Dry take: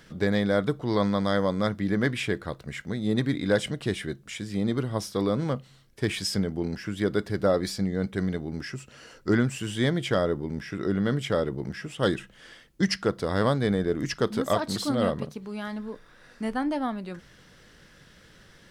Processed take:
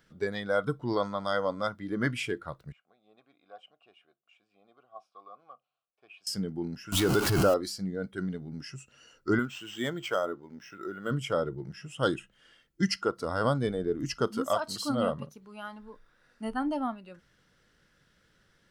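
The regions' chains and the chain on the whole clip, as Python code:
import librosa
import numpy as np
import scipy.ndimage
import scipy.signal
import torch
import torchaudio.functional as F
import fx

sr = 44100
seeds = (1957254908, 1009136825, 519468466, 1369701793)

y = fx.chain(x, sr, fx.vowel_filter(vowel='a'),
    fx.low_shelf(hz=370.0, db=-7.5), at=(2.72, 6.27))
y = fx.chain(y, sr, fx.zero_step(step_db=-27.5),
    fx.high_shelf(hz=4400.0, db=3.5),
    fx.pre_swell(db_per_s=26.0), at=(6.92, 7.54))
y = fx.chain(y, sr, fx.highpass(hz=340.0, slope=6),
    fx.high_shelf(hz=9200.0, db=8.0),
    fx.resample_linear(factor=4), at=(9.39, 11.11))
y = fx.noise_reduce_blind(y, sr, reduce_db=11)
y = fx.peak_eq(y, sr, hz=1400.0, db=5.5, octaves=0.2)
y = F.gain(torch.from_numpy(y), -2.5).numpy()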